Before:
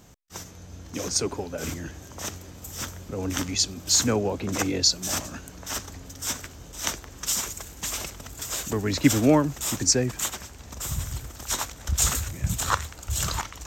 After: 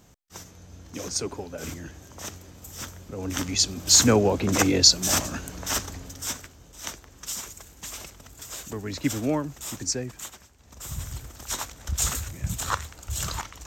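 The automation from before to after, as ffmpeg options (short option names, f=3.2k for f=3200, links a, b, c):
-af "volume=17dB,afade=t=in:st=3.18:d=0.9:silence=0.375837,afade=t=out:st=5.69:d=0.84:silence=0.251189,afade=t=out:st=9.92:d=0.65:silence=0.398107,afade=t=in:st=10.57:d=0.47:silence=0.251189"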